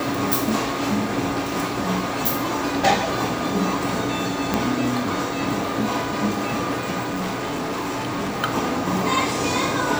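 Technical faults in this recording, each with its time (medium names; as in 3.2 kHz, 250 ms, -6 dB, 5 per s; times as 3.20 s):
4.54 s: pop -5 dBFS
7.02–8.43 s: clipped -22.5 dBFS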